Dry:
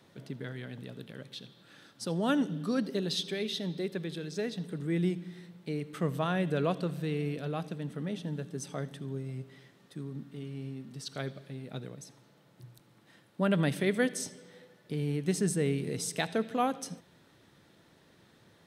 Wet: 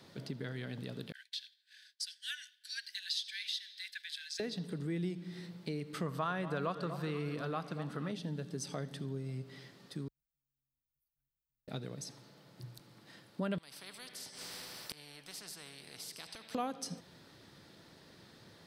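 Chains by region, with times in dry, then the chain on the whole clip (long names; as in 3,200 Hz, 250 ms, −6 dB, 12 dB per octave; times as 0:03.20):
0:01.12–0:04.40: Chebyshev high-pass filter 1,500 Hz, order 10 + downward expander −54 dBFS
0:06.06–0:08.12: parametric band 1,200 Hz +11 dB 1 octave + delay that swaps between a low-pass and a high-pass 239 ms, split 1,100 Hz, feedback 58%, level −11.5 dB
0:10.08–0:11.68: inverse Chebyshev band-stop filter 210–7,600 Hz, stop band 70 dB + low-shelf EQ 120 Hz −11 dB + comb filter 3.9 ms, depth 83%
0:13.58–0:16.55: notch filter 6,700 Hz, Q 8 + gate with flip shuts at −33 dBFS, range −26 dB + every bin compressed towards the loudest bin 4 to 1
whole clip: parametric band 4,700 Hz +8.5 dB 0.41 octaves; downward compressor 2.5 to 1, threshold −41 dBFS; level +2.5 dB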